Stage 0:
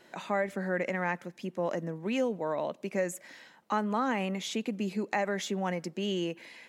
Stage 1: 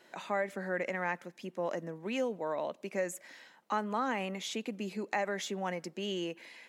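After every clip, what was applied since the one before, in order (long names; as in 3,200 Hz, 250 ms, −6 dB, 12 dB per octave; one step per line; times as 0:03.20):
low-shelf EQ 160 Hz −11.5 dB
level −2 dB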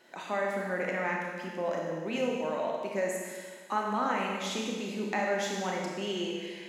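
four-comb reverb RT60 1.6 s, combs from 25 ms, DRR −1.5 dB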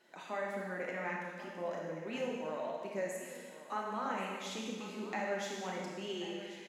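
flanger 1.7 Hz, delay 4.5 ms, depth 3.7 ms, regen −45%
single-tap delay 1,086 ms −15 dB
level −3.5 dB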